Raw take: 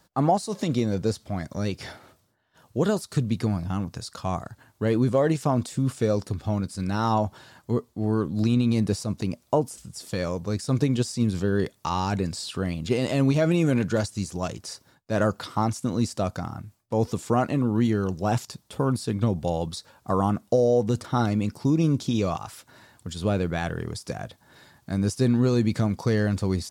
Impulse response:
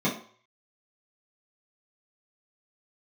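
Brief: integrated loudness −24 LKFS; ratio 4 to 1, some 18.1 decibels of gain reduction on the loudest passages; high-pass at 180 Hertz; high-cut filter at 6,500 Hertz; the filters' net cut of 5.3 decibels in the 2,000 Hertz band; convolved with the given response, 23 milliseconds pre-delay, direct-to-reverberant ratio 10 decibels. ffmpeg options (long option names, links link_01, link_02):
-filter_complex "[0:a]highpass=180,lowpass=6500,equalizer=frequency=2000:width_type=o:gain=-7.5,acompressor=threshold=-40dB:ratio=4,asplit=2[link_01][link_02];[1:a]atrim=start_sample=2205,adelay=23[link_03];[link_02][link_03]afir=irnorm=-1:irlink=0,volume=-22dB[link_04];[link_01][link_04]amix=inputs=2:normalize=0,volume=16dB"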